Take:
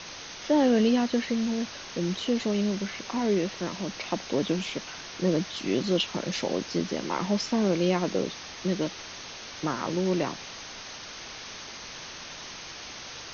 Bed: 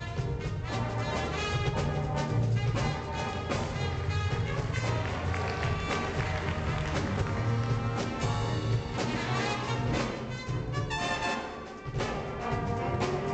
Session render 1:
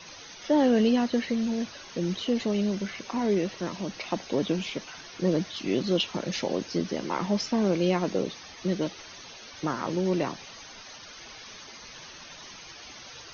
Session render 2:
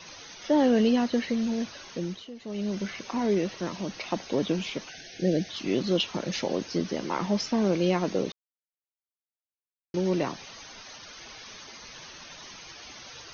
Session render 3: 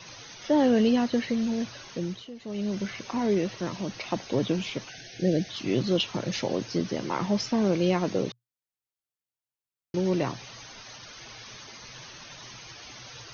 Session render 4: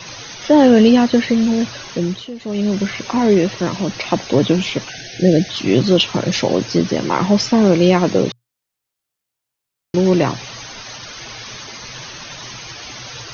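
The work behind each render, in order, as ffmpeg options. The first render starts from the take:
-af "afftdn=nr=11:nf=-42"
-filter_complex "[0:a]asettb=1/sr,asplit=3[a][b][c];[a]atrim=end=4.894[d];[b]atrim=start=4.89:end=5.49,asetpts=PTS-STARTPTS,afade=t=in:d=0.004:c=qsin,afade=t=out:st=0.596:d=0.004:c=qsin,asuperstop=centerf=1100:order=12:qfactor=1.6[e];[c]atrim=start=5.486[f];[d][e]acrossfade=d=0.004:c1=hsin:c2=qsin[g];[g][f]acrossfade=d=0.004:c1=qsin:c2=hsin,asplit=5[h][i][j][k][l];[h]atrim=end=2.3,asetpts=PTS-STARTPTS,afade=t=out:st=1.88:d=0.42:silence=0.149624[m];[i]atrim=start=2.3:end=2.4,asetpts=PTS-STARTPTS,volume=-16.5dB[n];[j]atrim=start=2.4:end=8.32,asetpts=PTS-STARTPTS,afade=t=in:d=0.42:silence=0.149624,afade=t=out:st=5.916:d=0.004:c=hsin[o];[k]atrim=start=8.32:end=9.94,asetpts=PTS-STARTPTS,volume=0[p];[l]atrim=start=9.94,asetpts=PTS-STARTPTS,afade=t=in:d=0.004:c=hsin[q];[m][n][o][p][q]concat=n=5:v=0:a=1"
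-af "equalizer=f=120:t=o:w=0.31:g=14"
-af "volume=12dB,alimiter=limit=-2dB:level=0:latency=1"

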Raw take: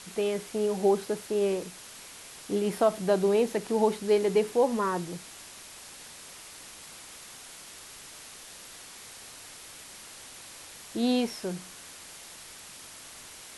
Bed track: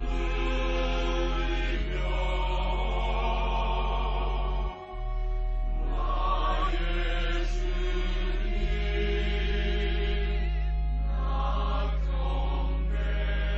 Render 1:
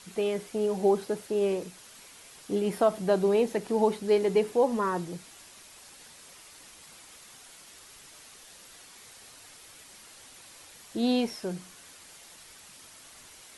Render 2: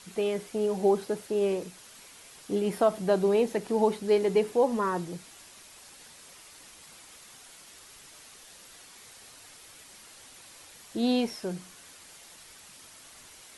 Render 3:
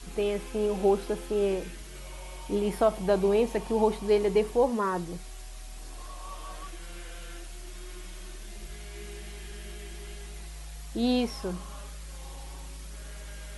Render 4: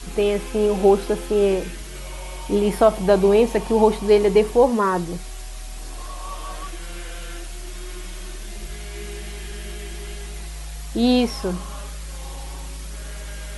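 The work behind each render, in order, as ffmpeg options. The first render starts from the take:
-af "afftdn=nr=6:nf=-47"
-af anull
-filter_complex "[1:a]volume=-14.5dB[a];[0:a][a]amix=inputs=2:normalize=0"
-af "volume=8.5dB"

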